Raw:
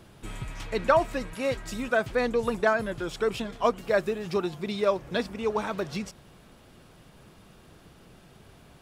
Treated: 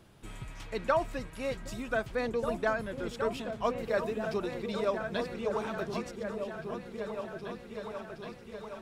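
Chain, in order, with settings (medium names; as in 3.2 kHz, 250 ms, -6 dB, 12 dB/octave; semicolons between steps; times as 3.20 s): delay with an opening low-pass 769 ms, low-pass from 200 Hz, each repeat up 2 oct, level -3 dB; trim -6.5 dB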